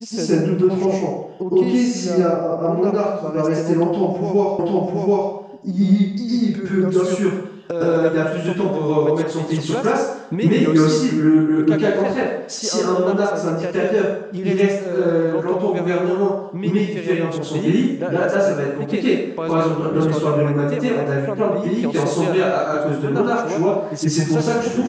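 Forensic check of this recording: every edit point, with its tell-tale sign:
4.59 s: repeat of the last 0.73 s

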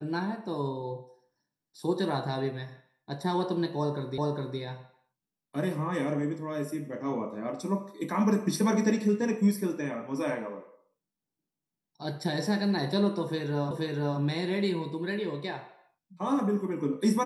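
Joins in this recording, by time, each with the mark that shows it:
4.18 s: repeat of the last 0.41 s
13.71 s: repeat of the last 0.48 s

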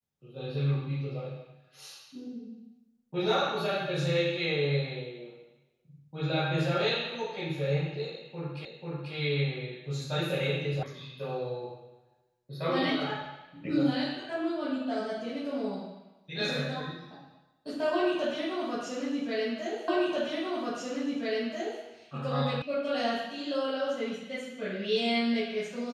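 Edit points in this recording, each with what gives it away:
8.65 s: repeat of the last 0.49 s
10.83 s: sound stops dead
19.88 s: repeat of the last 1.94 s
22.62 s: sound stops dead

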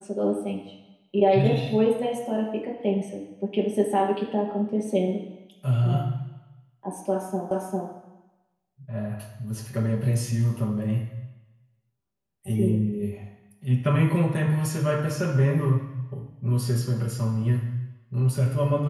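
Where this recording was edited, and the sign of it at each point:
7.51 s: repeat of the last 0.4 s

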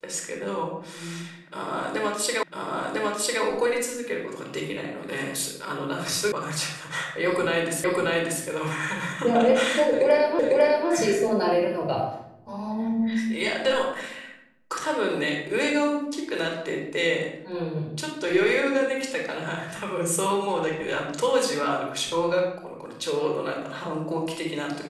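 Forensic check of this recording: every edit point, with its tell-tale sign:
2.43 s: repeat of the last 1 s
6.32 s: sound stops dead
7.84 s: repeat of the last 0.59 s
10.39 s: repeat of the last 0.5 s

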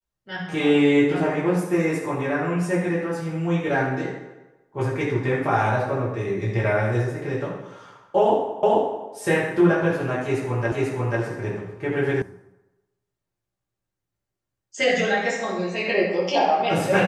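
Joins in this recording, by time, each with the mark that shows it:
8.63 s: repeat of the last 0.44 s
10.72 s: repeat of the last 0.49 s
12.22 s: sound stops dead

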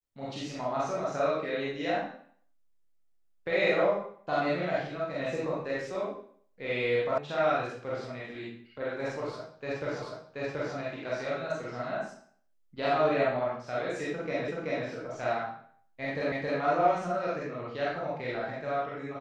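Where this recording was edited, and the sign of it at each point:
7.18 s: sound stops dead
10.02 s: repeat of the last 0.73 s
14.48 s: repeat of the last 0.38 s
16.32 s: repeat of the last 0.27 s

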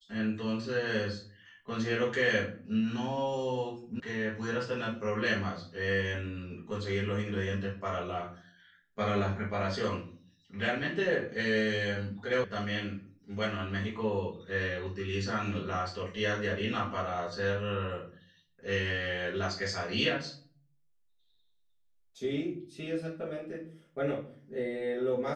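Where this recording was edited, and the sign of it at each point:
4.00 s: sound stops dead
12.44 s: sound stops dead

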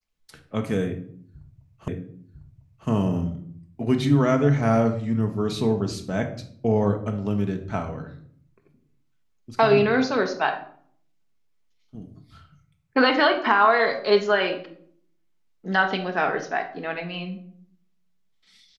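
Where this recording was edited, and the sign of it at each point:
1.88 s: repeat of the last 1 s

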